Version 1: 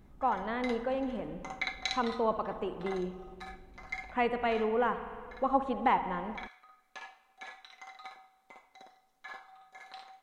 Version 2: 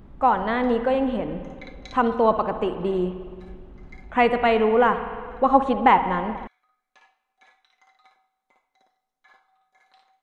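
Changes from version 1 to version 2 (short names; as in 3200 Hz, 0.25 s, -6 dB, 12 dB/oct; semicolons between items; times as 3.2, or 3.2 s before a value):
speech +11.0 dB; background -10.5 dB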